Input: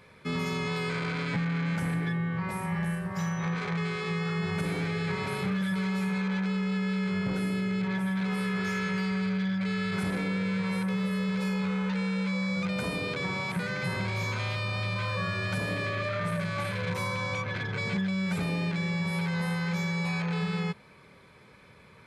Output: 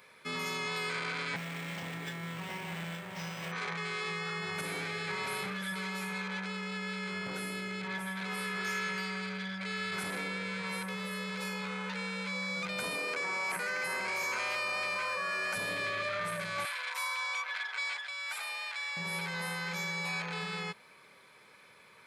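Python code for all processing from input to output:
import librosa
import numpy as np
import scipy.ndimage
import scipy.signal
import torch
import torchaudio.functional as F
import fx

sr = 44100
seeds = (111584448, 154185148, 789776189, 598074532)

y = fx.chain(x, sr, fx.lower_of_two(delay_ms=0.37),
    fx.echo_single(ms=870, db=-9.5),
    fx.resample_linear(factor=4), at=(1.36, 3.52))
y = fx.chain(y, sr, fx.highpass(hz=280.0, slope=12),
    fx.peak_eq(hz=3600.0, db=-12.5, octaves=0.36),
    fx.env_flatten(amount_pct=100), at=(12.95, 15.56))
y = fx.chain(y, sr, fx.highpass(hz=780.0, slope=24),
    fx.notch(hz=6200.0, q=14.0), at=(16.65, 18.97))
y = fx.highpass(y, sr, hz=790.0, slope=6)
y = fx.high_shelf(y, sr, hz=9900.0, db=8.5)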